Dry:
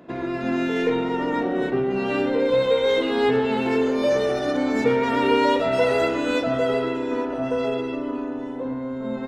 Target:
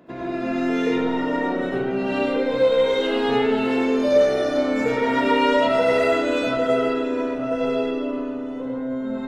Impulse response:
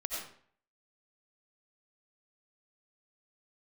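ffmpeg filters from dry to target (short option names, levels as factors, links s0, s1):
-filter_complex "[1:a]atrim=start_sample=2205[s0];[0:a][s0]afir=irnorm=-1:irlink=0,volume=0.841"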